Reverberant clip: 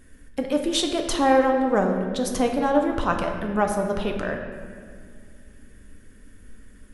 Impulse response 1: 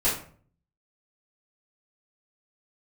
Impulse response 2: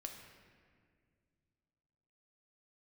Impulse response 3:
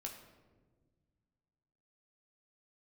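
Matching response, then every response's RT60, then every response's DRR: 2; 0.50 s, 2.0 s, 1.4 s; -11.0 dB, 2.5 dB, 0.0 dB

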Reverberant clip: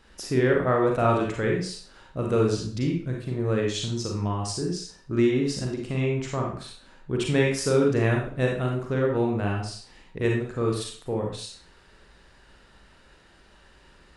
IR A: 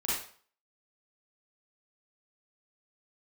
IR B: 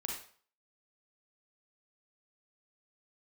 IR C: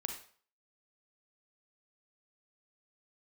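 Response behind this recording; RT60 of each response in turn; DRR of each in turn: B; 0.50 s, 0.50 s, 0.50 s; -8.5 dB, -1.0 dB, 4.0 dB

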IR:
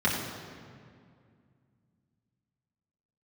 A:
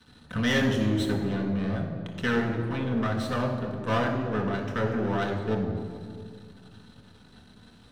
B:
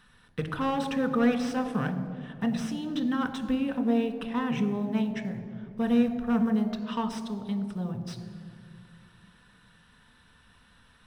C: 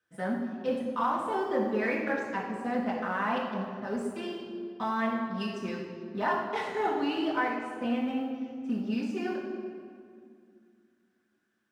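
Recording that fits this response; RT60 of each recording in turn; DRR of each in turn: C; 2.2 s, 2.2 s, 2.2 s; -0.5 dB, 6.5 dB, -6.5 dB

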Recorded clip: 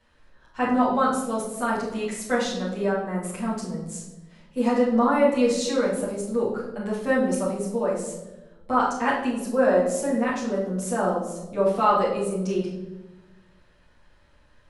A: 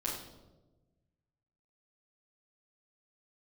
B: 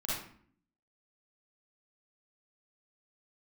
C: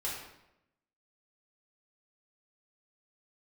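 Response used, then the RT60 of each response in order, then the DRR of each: A; 1.1 s, 0.55 s, 0.85 s; -8.0 dB, -7.5 dB, -6.5 dB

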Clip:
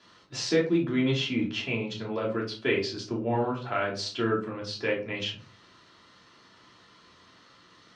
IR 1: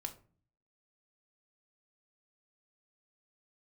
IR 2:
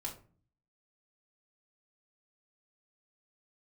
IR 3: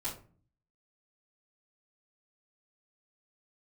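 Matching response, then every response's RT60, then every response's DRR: 3; 0.40 s, 0.40 s, 0.40 s; 4.0 dB, -3.0 dB, -11.5 dB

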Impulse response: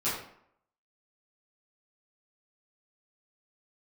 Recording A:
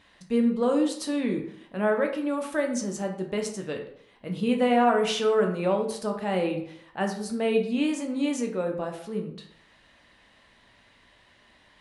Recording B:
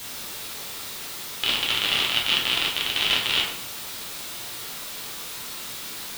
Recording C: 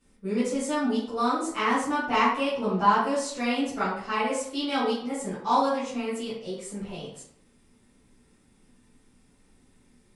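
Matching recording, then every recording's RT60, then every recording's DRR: C; 0.65 s, 0.65 s, 0.65 s; 2.5 dB, -4.0 dB, -13.0 dB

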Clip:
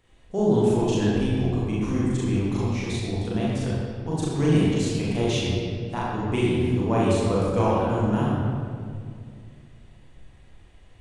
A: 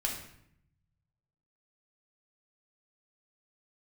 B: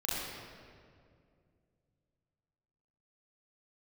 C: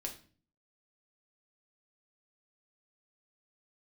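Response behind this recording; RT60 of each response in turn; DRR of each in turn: B; 0.70 s, 2.3 s, 0.40 s; -1.0 dB, -7.5 dB, 1.0 dB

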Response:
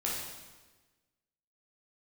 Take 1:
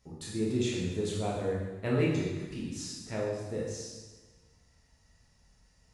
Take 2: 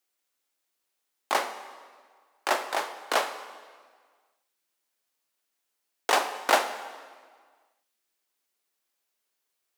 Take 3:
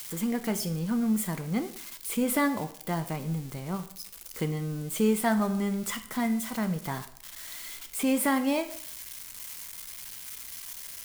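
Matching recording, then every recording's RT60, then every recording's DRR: 1; 1.3 s, 1.7 s, 0.60 s; -5.5 dB, 9.0 dB, 8.5 dB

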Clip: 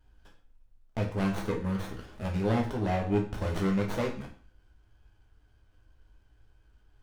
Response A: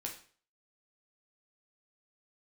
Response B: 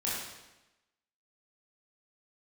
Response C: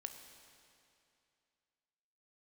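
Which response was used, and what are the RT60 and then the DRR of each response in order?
A; 0.45 s, 1.0 s, 2.6 s; 0.0 dB, -7.5 dB, 6.0 dB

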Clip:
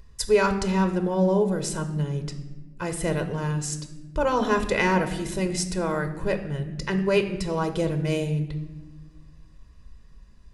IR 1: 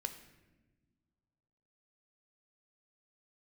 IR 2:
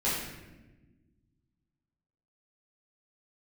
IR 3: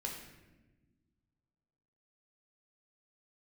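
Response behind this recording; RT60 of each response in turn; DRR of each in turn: 1; no single decay rate, 1.2 s, no single decay rate; 7.5 dB, -10.0 dB, -0.5 dB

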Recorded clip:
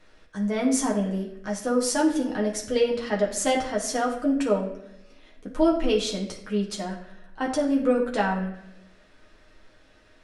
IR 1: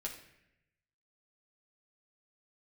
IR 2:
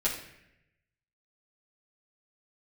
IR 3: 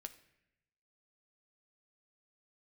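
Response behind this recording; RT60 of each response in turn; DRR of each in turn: 1; 0.80 s, 0.80 s, 0.80 s; -2.5 dB, -8.5 dB, 7.5 dB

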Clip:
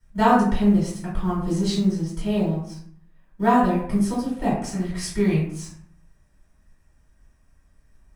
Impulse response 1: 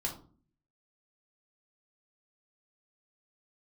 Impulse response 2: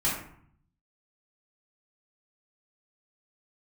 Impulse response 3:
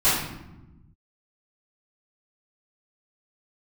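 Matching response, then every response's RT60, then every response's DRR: 2; 0.45 s, 0.60 s, 1.0 s; -0.5 dB, -8.5 dB, -16.0 dB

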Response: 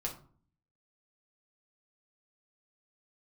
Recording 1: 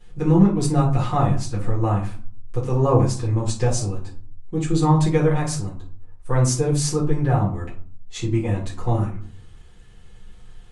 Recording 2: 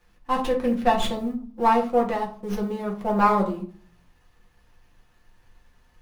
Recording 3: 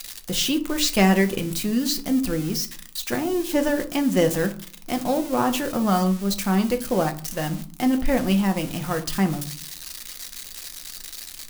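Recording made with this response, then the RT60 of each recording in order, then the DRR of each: 2; 0.45 s, 0.45 s, 0.45 s; -9.5 dB, -2.5 dB, 5.5 dB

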